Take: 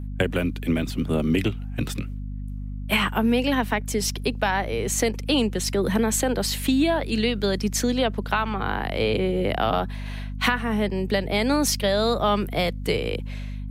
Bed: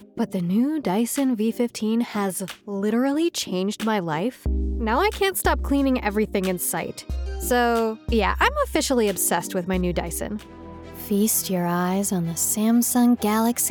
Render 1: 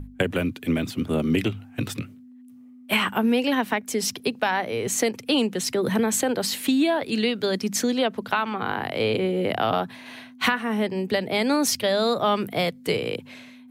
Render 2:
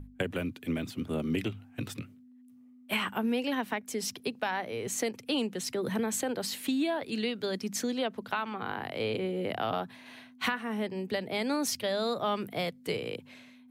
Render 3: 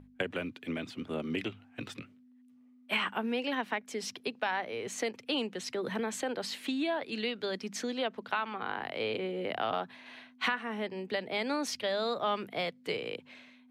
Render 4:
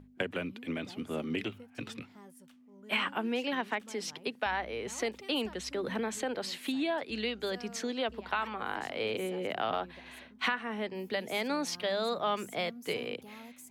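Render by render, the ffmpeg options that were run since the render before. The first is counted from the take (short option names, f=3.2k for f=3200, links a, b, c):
-af "bandreject=f=50:t=h:w=6,bandreject=f=100:t=h:w=6,bandreject=f=150:t=h:w=6,bandreject=f=200:t=h:w=6"
-af "volume=-8.5dB"
-af "lowpass=3.2k,aemphasis=mode=production:type=bsi"
-filter_complex "[1:a]volume=-29.5dB[a];[0:a][a]amix=inputs=2:normalize=0"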